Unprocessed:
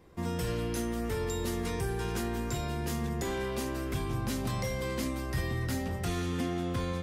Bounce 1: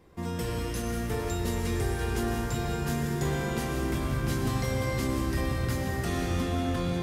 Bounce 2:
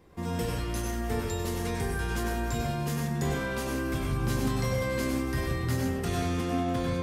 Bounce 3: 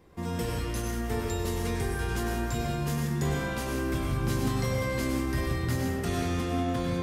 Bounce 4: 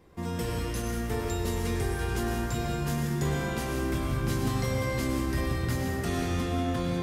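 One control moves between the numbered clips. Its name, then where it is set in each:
plate-style reverb, RT60: 5.2 s, 0.55 s, 1.2 s, 2.5 s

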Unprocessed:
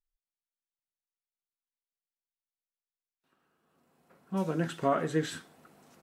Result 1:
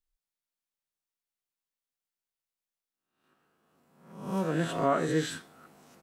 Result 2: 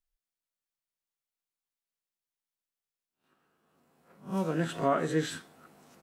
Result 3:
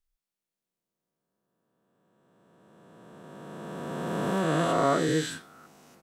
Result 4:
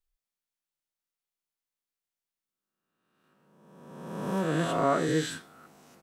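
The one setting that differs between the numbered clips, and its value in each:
reverse spectral sustain, rising 60 dB in: 0.68 s, 0.32 s, 3.19 s, 1.46 s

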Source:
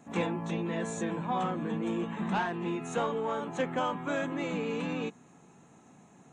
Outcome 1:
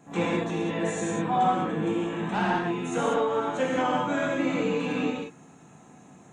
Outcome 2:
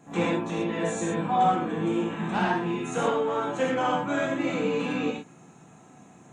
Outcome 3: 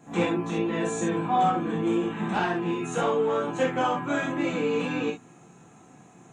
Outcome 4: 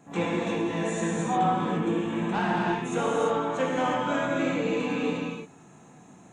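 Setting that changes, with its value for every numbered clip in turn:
gated-style reverb, gate: 220 ms, 150 ms, 90 ms, 380 ms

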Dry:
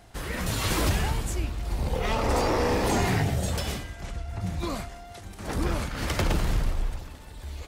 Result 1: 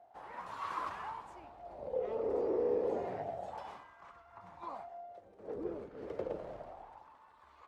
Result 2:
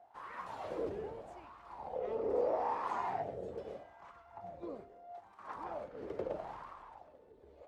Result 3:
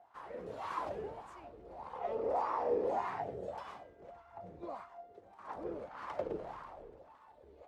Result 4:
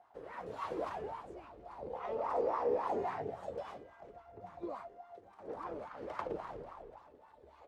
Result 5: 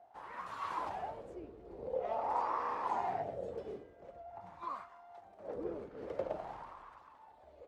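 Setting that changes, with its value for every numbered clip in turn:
wah-wah, rate: 0.3 Hz, 0.78 Hz, 1.7 Hz, 3.6 Hz, 0.47 Hz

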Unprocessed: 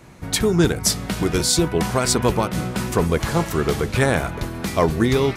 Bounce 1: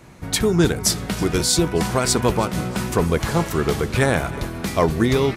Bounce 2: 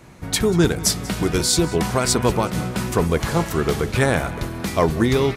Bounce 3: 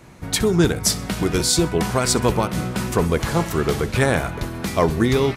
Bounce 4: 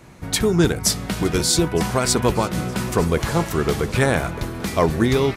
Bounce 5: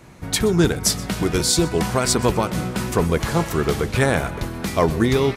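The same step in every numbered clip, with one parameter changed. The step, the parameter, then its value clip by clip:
feedback delay, time: 321 ms, 187 ms, 64 ms, 914 ms, 125 ms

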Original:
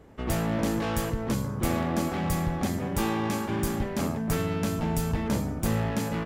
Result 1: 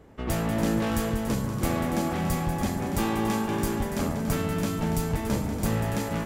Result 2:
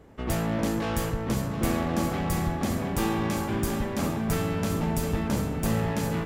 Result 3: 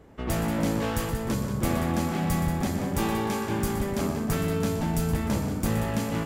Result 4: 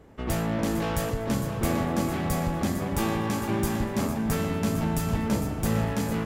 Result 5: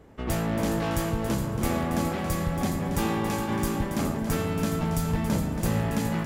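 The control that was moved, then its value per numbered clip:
multi-head delay, time: 95 ms, 356 ms, 61 ms, 227 ms, 139 ms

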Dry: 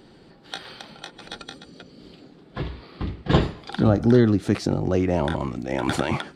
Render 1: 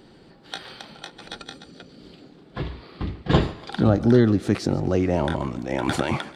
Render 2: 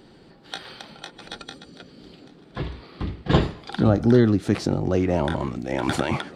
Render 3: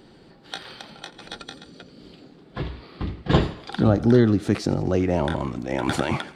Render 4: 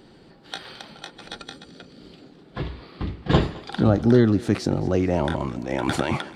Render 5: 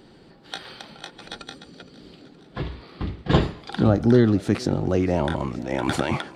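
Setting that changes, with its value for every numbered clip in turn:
thinning echo, time: 144 ms, 1234 ms, 85 ms, 216 ms, 468 ms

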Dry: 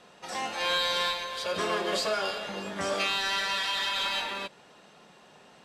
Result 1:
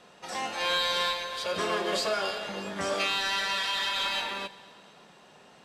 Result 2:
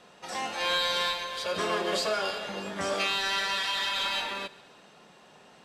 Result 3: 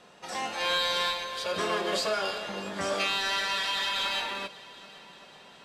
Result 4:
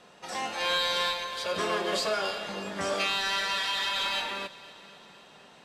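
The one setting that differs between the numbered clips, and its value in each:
multi-head delay, time: 112 ms, 69 ms, 391 ms, 254 ms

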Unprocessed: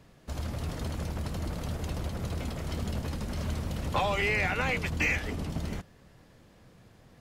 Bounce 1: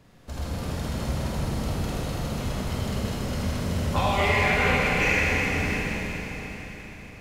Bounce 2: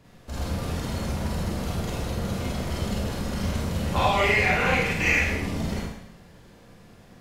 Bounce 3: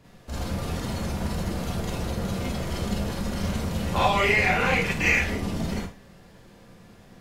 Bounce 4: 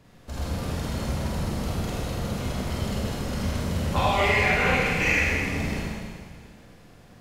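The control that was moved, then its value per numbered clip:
Schroeder reverb, RT60: 4.6 s, 0.76 s, 0.31 s, 1.9 s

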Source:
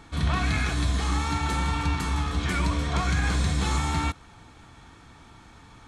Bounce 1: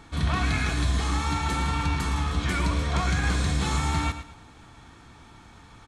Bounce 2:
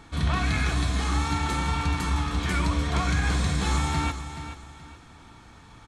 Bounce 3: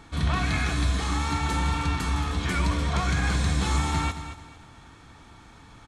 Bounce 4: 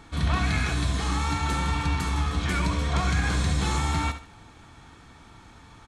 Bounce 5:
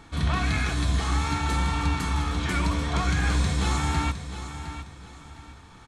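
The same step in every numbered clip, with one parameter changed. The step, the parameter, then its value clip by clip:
feedback delay, time: 111 ms, 427 ms, 224 ms, 70 ms, 710 ms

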